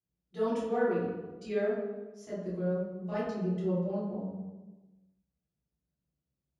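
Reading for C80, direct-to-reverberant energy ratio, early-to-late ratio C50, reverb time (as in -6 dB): 2.5 dB, -12.0 dB, -1.5 dB, 1.2 s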